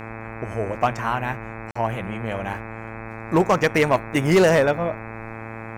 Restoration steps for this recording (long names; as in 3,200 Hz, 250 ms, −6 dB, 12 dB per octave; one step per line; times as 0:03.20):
clipped peaks rebuilt −10.5 dBFS
hum removal 111.9 Hz, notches 23
notch filter 810 Hz, Q 30
repair the gap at 0:01.71, 45 ms